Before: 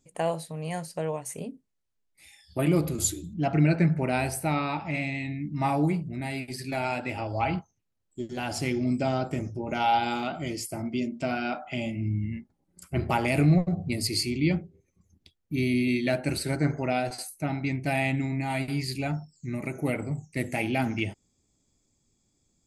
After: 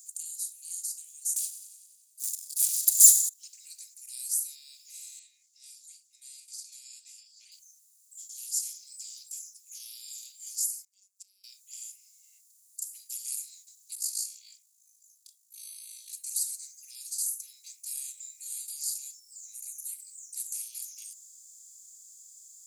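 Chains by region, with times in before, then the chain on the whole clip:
1.36–3.29 s: comb 2.1 ms, depth 63% + waveshaping leveller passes 5 + modulated delay 93 ms, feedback 52%, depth 64 cents, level -19 dB
5.19–7.52 s: distance through air 130 m + band-stop 4 kHz, Q 23
10.84–11.44 s: robot voice 194 Hz + inverted gate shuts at -27 dBFS, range -29 dB
13.95–16.13 s: treble shelf 5.3 kHz -8 dB + AM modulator 54 Hz, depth 75% + doubling 27 ms -6 dB
whole clip: spectral levelling over time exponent 0.6; inverse Chebyshev high-pass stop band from 1.1 kHz, stop band 80 dB; comb 3.3 ms, depth 40%

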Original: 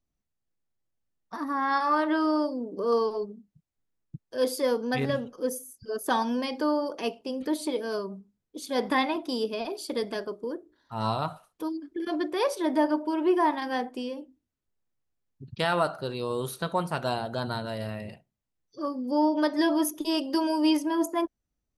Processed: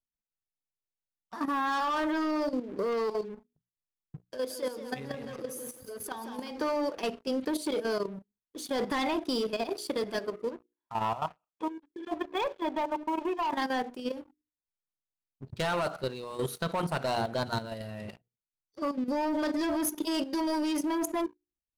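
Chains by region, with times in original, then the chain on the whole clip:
4.26–6.51 s: compression 2:1, threshold -38 dBFS + modulated delay 175 ms, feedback 42%, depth 69 cents, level -7 dB
10.50–13.52 s: transient shaper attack +6 dB, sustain -5 dB + rippled Chebyshev low-pass 3.5 kHz, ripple 9 dB
whole clip: hum notches 60/120/180/240/300/360/420/480 Hz; waveshaping leveller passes 3; level held to a coarse grid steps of 11 dB; trim -7 dB

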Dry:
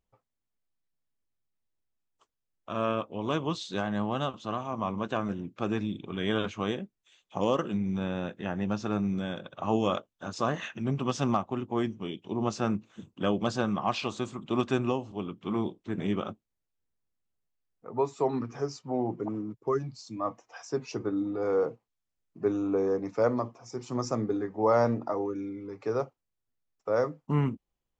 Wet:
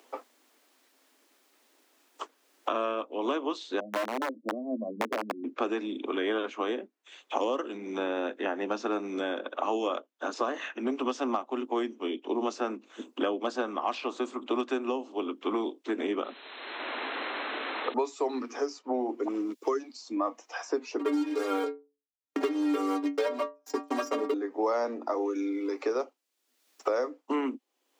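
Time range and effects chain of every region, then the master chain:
3.80–5.44 s: spectral contrast enhancement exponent 2.5 + elliptic low-pass 540 Hz, stop band 60 dB + integer overflow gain 27 dB
16.24–17.94 s: level held to a coarse grid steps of 21 dB + word length cut 8-bit, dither triangular + brick-wall FIR low-pass 4.2 kHz
20.99–24.34 s: transient shaper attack +6 dB, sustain -11 dB + waveshaping leveller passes 5 + inharmonic resonator 140 Hz, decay 0.28 s, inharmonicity 0.008
whole clip: steep high-pass 250 Hz 72 dB/octave; treble shelf 6.1 kHz -5 dB; three bands compressed up and down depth 100%

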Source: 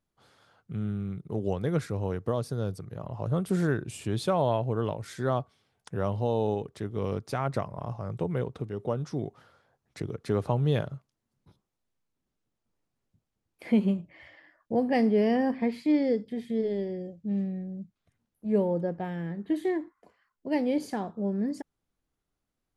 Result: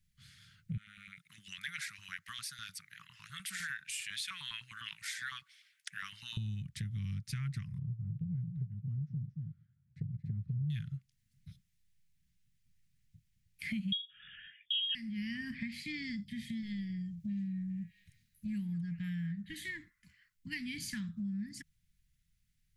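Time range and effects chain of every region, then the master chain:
0.77–6.37 s: bass shelf 91 Hz +9.5 dB + LFO high-pass saw up 9.9 Hz 930–2300 Hz
7.78–10.70 s: band-pass filter 140 Hz, Q 1.4 + delay 227 ms -9 dB
13.92–14.95 s: peaking EQ 190 Hz +10.5 dB 1.5 oct + short-mantissa float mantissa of 8-bit + frequency inversion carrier 3.5 kHz
17.20–19.32 s: treble shelf 5 kHz +5 dB + repeats whose band climbs or falls 201 ms, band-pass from 1.2 kHz, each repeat 0.7 oct, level -6.5 dB
whole clip: elliptic band-stop 170–1900 Hz, stop band 80 dB; bass shelf 170 Hz +4.5 dB; compression 4:1, threshold -44 dBFS; trim +6.5 dB

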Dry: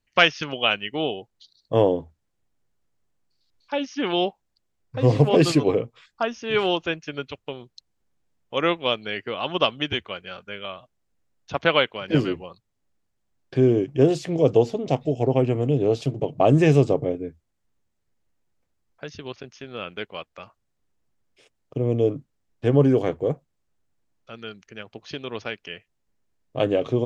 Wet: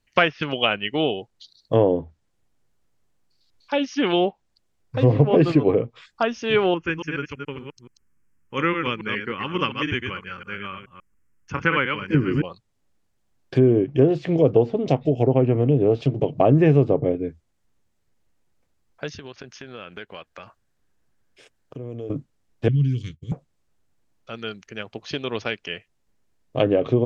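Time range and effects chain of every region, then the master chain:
6.74–12.43 s: chunks repeated in reverse 142 ms, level -5.5 dB + static phaser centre 1.6 kHz, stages 4
19.13–22.10 s: peaking EQ 1.6 kHz +7 dB 0.29 oct + compression 3:1, threshold -41 dBFS
22.68–23.32 s: Chebyshev band-stop 120–3900 Hz + expander -36 dBFS
whole clip: low-pass that closes with the level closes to 1.9 kHz, closed at -17.5 dBFS; dynamic bell 910 Hz, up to -3 dB, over -34 dBFS, Q 0.9; compression 2:1, threshold -19 dBFS; trim +5 dB

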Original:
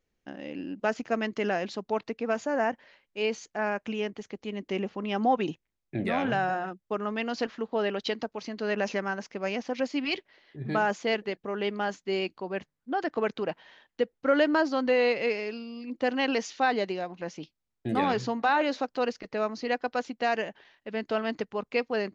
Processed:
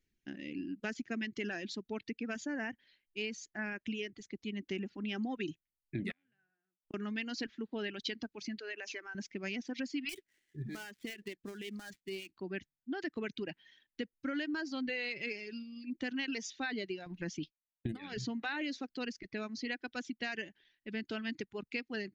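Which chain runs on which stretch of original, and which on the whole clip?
6.11–6.94 s: peaking EQ 1.9 kHz +6 dB 1.8 oct + inverted gate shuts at -31 dBFS, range -38 dB + tape noise reduction on one side only decoder only
8.58–9.15 s: high-pass 370 Hz 24 dB/octave + compression 3:1, threshold -33 dBFS
10.09–12.36 s: dead-time distortion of 0.085 ms + compression, threshold -31 dBFS + tremolo triangle 4.5 Hz, depth 40%
17.06–18.18 s: expander -51 dBFS + bass shelf 75 Hz +11.5 dB + compressor with a negative ratio -29 dBFS, ratio -0.5
whole clip: reverb removal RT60 1.6 s; high-order bell 770 Hz -14.5 dB; compression 5:1, threshold -33 dBFS; trim -1 dB

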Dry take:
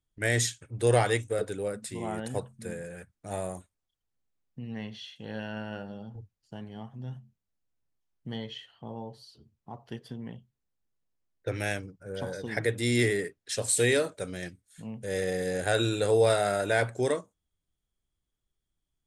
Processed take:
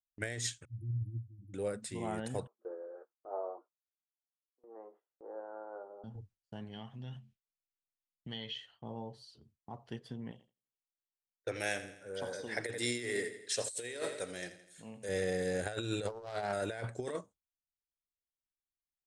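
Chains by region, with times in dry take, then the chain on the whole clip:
0.65–1.54 s: spectral contrast enhancement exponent 1.8 + brick-wall FIR band-stop 340–10000 Hz + peaking EQ 400 Hz -9 dB 2.2 oct
2.47–6.04 s: Chebyshev band-pass 340–1300 Hz, order 4 + doubling 15 ms -9 dB
6.73–8.56 s: peaking EQ 2.9 kHz +12 dB 1.4 oct + compression 2:1, threshold -38 dBFS
10.31–15.09 s: tone controls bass -11 dB, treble +4 dB + feedback delay 83 ms, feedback 50%, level -12.5 dB
16.07–16.53 s: distance through air 93 m + loudspeaker Doppler distortion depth 0.46 ms
whole clip: low-pass 10 kHz 24 dB/octave; gate with hold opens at -47 dBFS; compressor with a negative ratio -29 dBFS, ratio -0.5; trim -6 dB

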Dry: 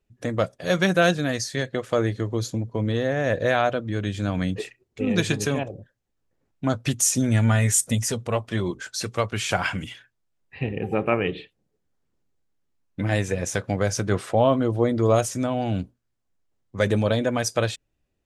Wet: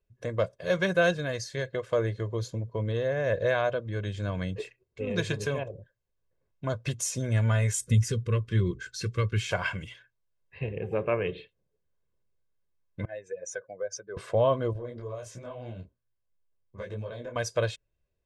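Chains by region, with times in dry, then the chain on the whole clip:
7.81–9.50 s: Butterworth band-stop 740 Hz, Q 0.9 + bass shelf 350 Hz +9 dB
13.05–14.17 s: spectral contrast enhancement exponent 1.9 + high-pass 650 Hz
14.73–17.36 s: treble shelf 8.3 kHz -7.5 dB + compression 8:1, threshold -25 dBFS + detune thickener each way 46 cents
whole clip: treble shelf 7.2 kHz -11.5 dB; comb 1.9 ms, depth 62%; trim -6.5 dB

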